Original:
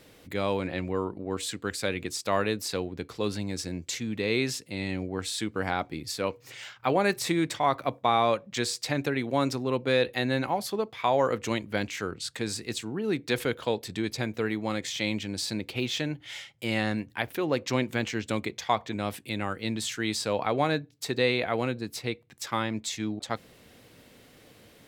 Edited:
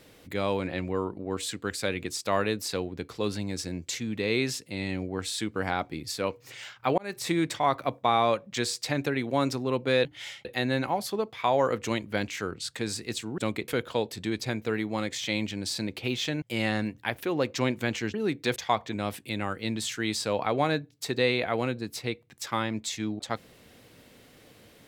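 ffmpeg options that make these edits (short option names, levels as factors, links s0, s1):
-filter_complex "[0:a]asplit=9[s0][s1][s2][s3][s4][s5][s6][s7][s8];[s0]atrim=end=6.98,asetpts=PTS-STARTPTS,afade=t=out:st=6.976:d=0.004:c=hsin[s9];[s1]atrim=start=6.98:end=10.052,asetpts=PTS-STARTPTS,afade=t=in:d=0.35[s10];[s2]atrim=start=16.138:end=16.542[s11];[s3]atrim=start=10.048:end=12.982[s12];[s4]atrim=start=18.258:end=18.562[s13];[s5]atrim=start=13.398:end=16.142[s14];[s6]atrim=start=16.538:end=18.262[s15];[s7]atrim=start=12.978:end=13.402[s16];[s8]atrim=start=18.558[s17];[s9][s10]concat=n=2:v=0:a=1[s18];[s18][s11]acrossfade=d=0.004:c1=hsin:c2=hsin[s19];[s19][s12]acrossfade=d=0.004:c1=hsin:c2=hsin[s20];[s20][s13]acrossfade=d=0.004:c1=hsin:c2=hsin[s21];[s21][s14]acrossfade=d=0.004:c1=hsin:c2=hsin[s22];[s22][s15]acrossfade=d=0.004:c1=hsin:c2=hsin[s23];[s23][s16]acrossfade=d=0.004:c1=hsin:c2=hsin[s24];[s24][s17]acrossfade=d=0.004:c1=hsin:c2=hsin"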